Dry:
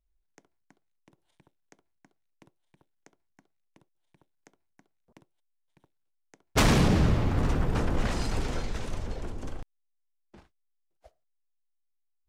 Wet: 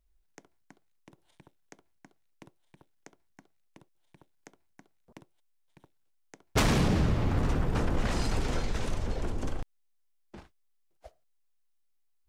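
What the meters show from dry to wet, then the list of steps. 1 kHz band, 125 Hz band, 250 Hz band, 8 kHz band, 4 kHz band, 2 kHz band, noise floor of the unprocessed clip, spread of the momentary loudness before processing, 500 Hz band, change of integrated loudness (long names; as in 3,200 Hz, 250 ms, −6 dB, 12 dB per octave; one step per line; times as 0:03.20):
−2.0 dB, −2.0 dB, −2.5 dB, −2.5 dB, −2.5 dB, −2.5 dB, −76 dBFS, 17 LU, −1.5 dB, −2.5 dB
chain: downward compressor 2.5 to 1, threshold −32 dBFS, peak gain reduction 9.5 dB
level +5.5 dB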